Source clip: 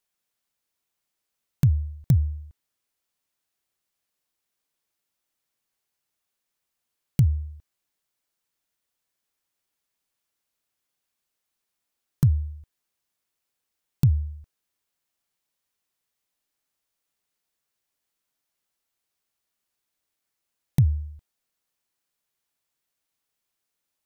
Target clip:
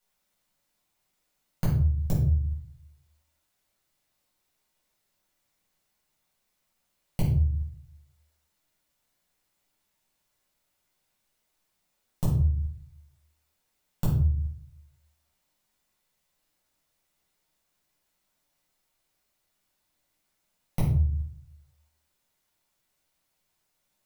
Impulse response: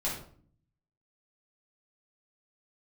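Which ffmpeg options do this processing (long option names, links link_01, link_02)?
-filter_complex "[0:a]acompressor=threshold=-31dB:ratio=6[link_01];[1:a]atrim=start_sample=2205[link_02];[link_01][link_02]afir=irnorm=-1:irlink=0,volume=1dB"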